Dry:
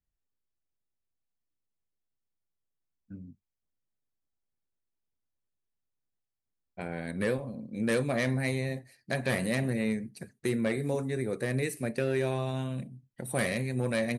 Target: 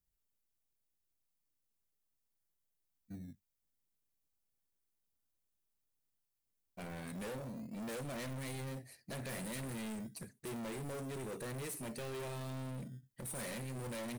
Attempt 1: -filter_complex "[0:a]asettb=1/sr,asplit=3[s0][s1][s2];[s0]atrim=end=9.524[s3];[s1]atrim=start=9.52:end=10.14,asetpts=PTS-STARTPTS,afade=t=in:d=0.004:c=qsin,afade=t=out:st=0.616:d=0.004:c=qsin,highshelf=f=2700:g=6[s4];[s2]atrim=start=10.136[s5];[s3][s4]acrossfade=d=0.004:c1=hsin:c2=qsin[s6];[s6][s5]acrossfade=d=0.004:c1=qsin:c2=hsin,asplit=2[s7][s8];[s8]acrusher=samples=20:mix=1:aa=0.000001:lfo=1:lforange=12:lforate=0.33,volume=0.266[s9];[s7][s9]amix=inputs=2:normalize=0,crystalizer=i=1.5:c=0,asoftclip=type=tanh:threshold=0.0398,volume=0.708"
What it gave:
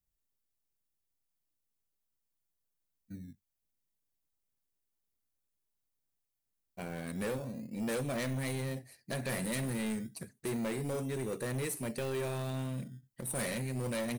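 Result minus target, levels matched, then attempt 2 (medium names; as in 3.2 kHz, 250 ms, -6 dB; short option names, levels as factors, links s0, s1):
saturation: distortion -5 dB
-filter_complex "[0:a]asettb=1/sr,asplit=3[s0][s1][s2];[s0]atrim=end=9.524[s3];[s1]atrim=start=9.52:end=10.14,asetpts=PTS-STARTPTS,afade=t=in:d=0.004:c=qsin,afade=t=out:st=0.616:d=0.004:c=qsin,highshelf=f=2700:g=6[s4];[s2]atrim=start=10.136[s5];[s3][s4]acrossfade=d=0.004:c1=hsin:c2=qsin[s6];[s6][s5]acrossfade=d=0.004:c1=qsin:c2=hsin,asplit=2[s7][s8];[s8]acrusher=samples=20:mix=1:aa=0.000001:lfo=1:lforange=12:lforate=0.33,volume=0.266[s9];[s7][s9]amix=inputs=2:normalize=0,crystalizer=i=1.5:c=0,asoftclip=type=tanh:threshold=0.0126,volume=0.708"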